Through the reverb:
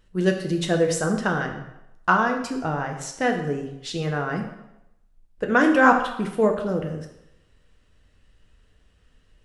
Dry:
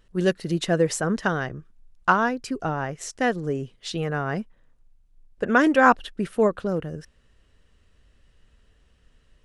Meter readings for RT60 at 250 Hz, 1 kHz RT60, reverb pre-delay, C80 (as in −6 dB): 0.80 s, 0.90 s, 6 ms, 10.0 dB